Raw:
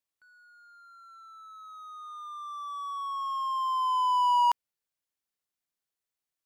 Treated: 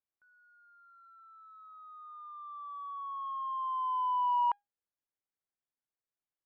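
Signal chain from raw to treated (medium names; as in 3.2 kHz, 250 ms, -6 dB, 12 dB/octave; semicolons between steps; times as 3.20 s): Bessel low-pass 1.6 kHz, order 4; feedback comb 810 Hz, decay 0.2 s, mix 50%; trim +1.5 dB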